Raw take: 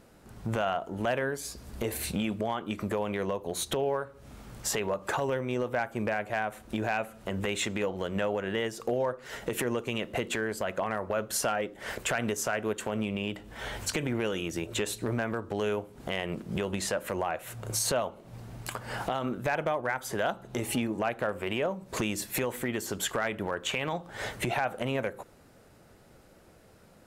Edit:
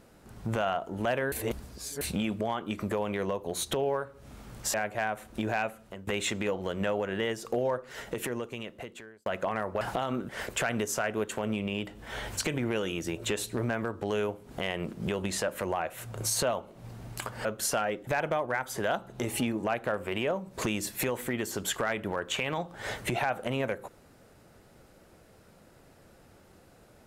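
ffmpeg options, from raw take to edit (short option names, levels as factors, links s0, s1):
-filter_complex "[0:a]asplit=10[s0][s1][s2][s3][s4][s5][s6][s7][s8][s9];[s0]atrim=end=1.322[s10];[s1]atrim=start=1.318:end=2.012,asetpts=PTS-STARTPTS,areverse[s11];[s2]atrim=start=2.008:end=4.742[s12];[s3]atrim=start=6.088:end=7.42,asetpts=PTS-STARTPTS,afade=t=out:st=0.892:d=0.44:silence=0.112202[s13];[s4]atrim=start=7.42:end=10.61,asetpts=PTS-STARTPTS,afade=t=in:d=0.004:c=hsin:silence=0.112202,afade=t=out:st=1.75:d=1.44[s14];[s5]atrim=start=10.61:end=11.162,asetpts=PTS-STARTPTS,afade=t=in:d=0.004:c=hsin[s15];[s6]atrim=start=18.938:end=19.422[s16];[s7]atrim=start=11.778:end=18.942[s17];[s8]atrim=start=11.158:end=11.782[s18];[s9]atrim=start=19.418[s19];[s10][s11]acrossfade=d=0.004:c1=hsin:c2=hsin[s20];[s20][s12]acrossfade=d=0.004:c1=hsin:c2=hsin[s21];[s13][s14][s15]concat=n=3:v=0:a=1[s22];[s21][s22]acrossfade=d=0.004:c1=hsin:c2=hsin[s23];[s23][s16]acrossfade=d=0.004:c1=hsin:c2=hsin[s24];[s24][s17]acrossfade=d=0.004:c1=hsin:c2=hsin[s25];[s25][s18]acrossfade=d=0.004:c1=hsin:c2=hsin[s26];[s26][s19]acrossfade=d=0.004:c1=hsin:c2=hsin"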